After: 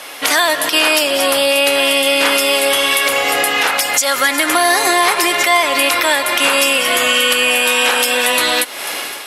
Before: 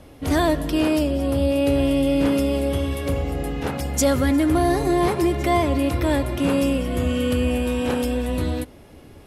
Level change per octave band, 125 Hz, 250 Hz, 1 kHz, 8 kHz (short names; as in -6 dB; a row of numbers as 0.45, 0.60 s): under -20 dB, -5.5 dB, +11.5 dB, +17.0 dB